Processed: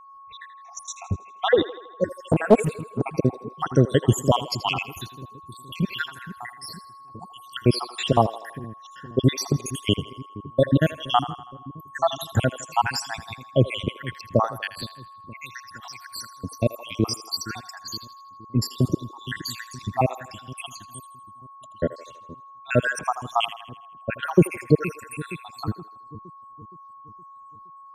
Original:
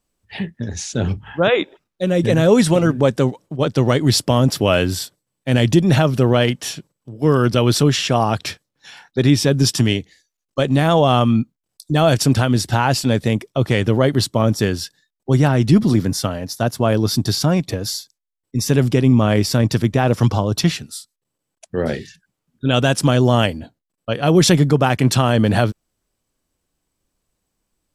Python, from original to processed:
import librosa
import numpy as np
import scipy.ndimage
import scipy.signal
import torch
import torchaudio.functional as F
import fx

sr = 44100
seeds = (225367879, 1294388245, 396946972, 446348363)

y = fx.spec_dropout(x, sr, seeds[0], share_pct=84)
y = fx.dynamic_eq(y, sr, hz=790.0, q=0.87, threshold_db=-35.0, ratio=4.0, max_db=4)
y = y + 10.0 ** (-44.0 / 20.0) * np.sin(2.0 * np.pi * 1100.0 * np.arange(len(y)) / sr)
y = fx.echo_split(y, sr, split_hz=390.0, low_ms=468, high_ms=81, feedback_pct=52, wet_db=-14.5)
y = fx.doppler_dist(y, sr, depth_ms=0.63, at=(2.29, 3.09))
y = y * 10.0 ** (-1.0 / 20.0)